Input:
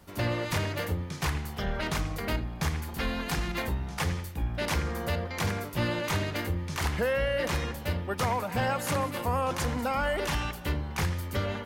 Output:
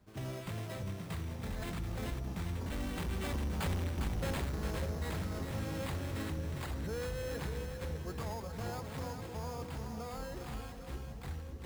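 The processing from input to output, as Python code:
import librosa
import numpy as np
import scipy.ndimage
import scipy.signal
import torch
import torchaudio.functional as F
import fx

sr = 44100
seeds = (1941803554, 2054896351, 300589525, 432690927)

p1 = fx.doppler_pass(x, sr, speed_mps=33, closest_m=6.4, pass_at_s=3.78)
p2 = fx.low_shelf(p1, sr, hz=430.0, db=8.0)
p3 = fx.over_compress(p2, sr, threshold_db=-49.0, ratio=-1.0)
p4 = p2 + (p3 * librosa.db_to_amplitude(-2.0))
p5 = fx.sample_hold(p4, sr, seeds[0], rate_hz=5800.0, jitter_pct=0)
p6 = np.clip(10.0 ** (35.0 / 20.0) * p5, -1.0, 1.0) / 10.0 ** (35.0 / 20.0)
p7 = p6 + fx.echo_split(p6, sr, split_hz=660.0, low_ms=592, high_ms=404, feedback_pct=52, wet_db=-6, dry=0)
y = p7 * librosa.db_to_amplitude(1.0)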